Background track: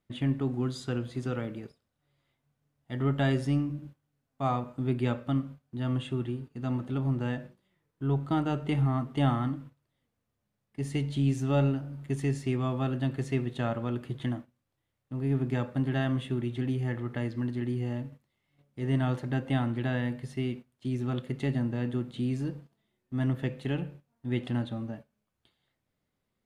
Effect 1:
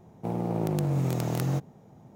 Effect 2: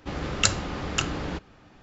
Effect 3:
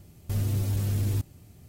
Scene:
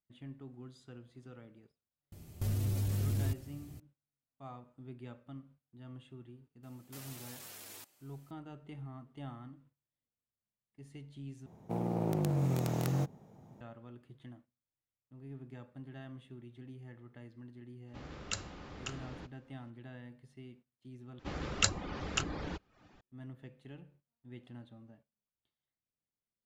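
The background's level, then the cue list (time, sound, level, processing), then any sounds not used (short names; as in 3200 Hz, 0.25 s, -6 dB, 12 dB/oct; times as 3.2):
background track -19.5 dB
2.12 add 3 -0.5 dB + compressor 4:1, threshold -30 dBFS
6.63 add 3 -6.5 dB + HPF 820 Hz
11.46 replace with 1 -4.5 dB
17.88 add 2 -16.5 dB
21.19 replace with 2 -7 dB + reverb removal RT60 0.51 s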